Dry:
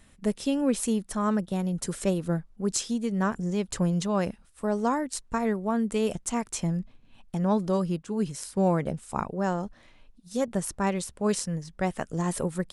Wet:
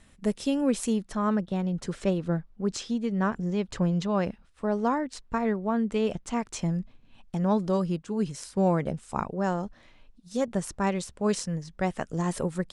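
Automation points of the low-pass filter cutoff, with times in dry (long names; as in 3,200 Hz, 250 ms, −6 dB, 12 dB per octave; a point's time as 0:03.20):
0:00.73 10,000 Hz
0:01.23 4,400 Hz
0:06.29 4,400 Hz
0:06.72 7,800 Hz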